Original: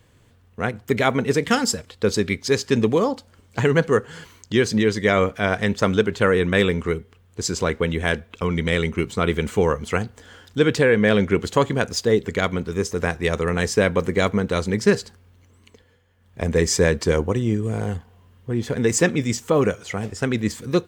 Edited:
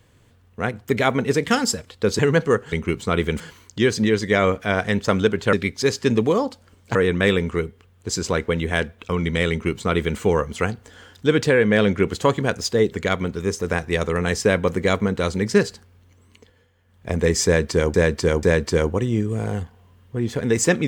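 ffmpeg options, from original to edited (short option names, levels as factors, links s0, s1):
-filter_complex "[0:a]asplit=8[s0][s1][s2][s3][s4][s5][s6][s7];[s0]atrim=end=2.192[s8];[s1]atrim=start=3.608:end=4.142[s9];[s2]atrim=start=8.818:end=9.502[s10];[s3]atrim=start=4.138:end=6.272[s11];[s4]atrim=start=2.188:end=3.612[s12];[s5]atrim=start=6.268:end=17.262[s13];[s6]atrim=start=16.768:end=17.262[s14];[s7]atrim=start=16.768[s15];[s8][s9]acrossfade=d=0.004:c1=hsin:c2=hsin[s16];[s16][s10]acrossfade=d=0.004:c1=hsin:c2=hsin[s17];[s17][s11]acrossfade=d=0.004:c1=hsin:c2=hsin[s18];[s18][s12]acrossfade=d=0.004:c1=hsin:c2=hsin[s19];[s19][s13]acrossfade=d=0.004:c1=hsin:c2=hsin[s20];[s20][s14]acrossfade=d=0.004:c1=hsin:c2=hsin[s21];[s21][s15]acrossfade=d=0.004:c1=hsin:c2=hsin"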